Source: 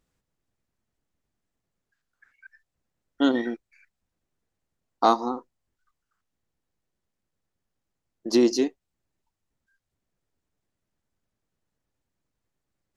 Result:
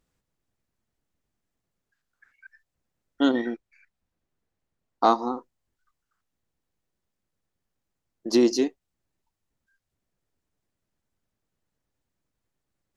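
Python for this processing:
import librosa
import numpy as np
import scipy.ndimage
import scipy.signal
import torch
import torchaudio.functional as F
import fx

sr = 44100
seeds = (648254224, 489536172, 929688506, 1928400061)

y = fx.high_shelf(x, sr, hz=6100.0, db=-8.0, at=(3.31, 5.3))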